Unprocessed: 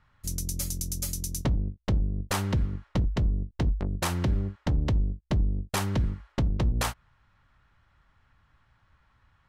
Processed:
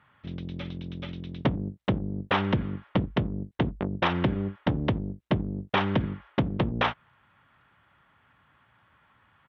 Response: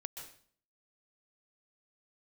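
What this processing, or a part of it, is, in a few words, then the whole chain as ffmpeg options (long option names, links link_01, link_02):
Bluetooth headset: -af "highpass=160,aresample=8000,aresample=44100,volume=6dB" -ar 32000 -c:a sbc -b:a 64k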